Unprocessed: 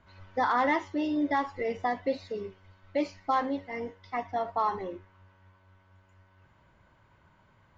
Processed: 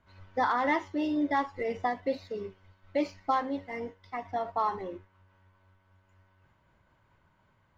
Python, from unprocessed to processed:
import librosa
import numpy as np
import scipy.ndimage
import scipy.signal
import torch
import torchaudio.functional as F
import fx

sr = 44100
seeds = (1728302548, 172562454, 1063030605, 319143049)

p1 = fx.backlash(x, sr, play_db=-46.5)
p2 = x + (p1 * librosa.db_to_amplitude(-7.0))
p3 = fx.am_noise(p2, sr, seeds[0], hz=5.7, depth_pct=50)
y = p3 * librosa.db_to_amplitude(-2.0)